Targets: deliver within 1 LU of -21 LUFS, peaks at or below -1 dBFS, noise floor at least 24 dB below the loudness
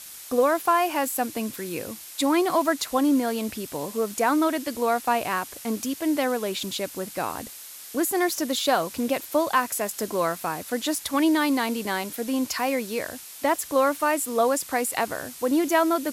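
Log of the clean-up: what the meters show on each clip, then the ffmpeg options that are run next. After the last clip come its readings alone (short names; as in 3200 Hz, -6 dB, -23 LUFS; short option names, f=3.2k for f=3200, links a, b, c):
noise floor -42 dBFS; noise floor target -49 dBFS; loudness -25.0 LUFS; peak -9.0 dBFS; loudness target -21.0 LUFS
-> -af "afftdn=nr=7:nf=-42"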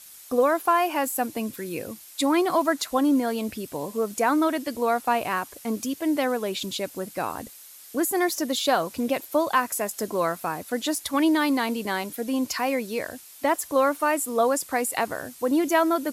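noise floor -47 dBFS; noise floor target -49 dBFS
-> -af "afftdn=nr=6:nf=-47"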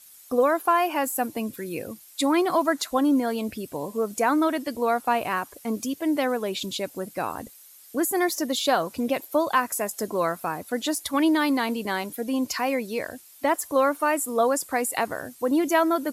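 noise floor -50 dBFS; loudness -25.5 LUFS; peak -9.5 dBFS; loudness target -21.0 LUFS
-> -af "volume=4.5dB"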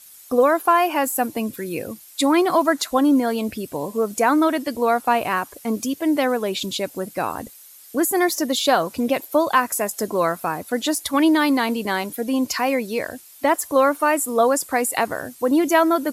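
loudness -21.0 LUFS; peak -5.0 dBFS; noise floor -46 dBFS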